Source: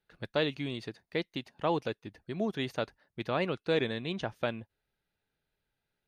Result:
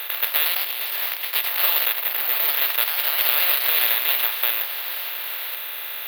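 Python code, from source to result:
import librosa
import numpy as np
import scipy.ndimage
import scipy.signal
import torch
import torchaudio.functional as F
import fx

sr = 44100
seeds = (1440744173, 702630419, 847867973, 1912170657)

y = fx.bin_compress(x, sr, power=0.2)
y = fx.over_compress(y, sr, threshold_db=-32.0, ratio=-1.0, at=(0.45, 1.25))
y = fx.high_shelf(y, sr, hz=4500.0, db=-8.5, at=(1.93, 2.71))
y = fx.echo_pitch(y, sr, ms=139, semitones=2, count=2, db_per_echo=-3.0)
y = (np.kron(y[::3], np.eye(3)[0]) * 3)[:len(y)]
y = scipy.signal.sosfilt(scipy.signal.butter(2, 1200.0, 'highpass', fs=sr, output='sos'), y)
y = fx.peak_eq(y, sr, hz=3200.0, db=8.5, octaves=1.6)
y = F.gain(torch.from_numpy(y), -2.5).numpy()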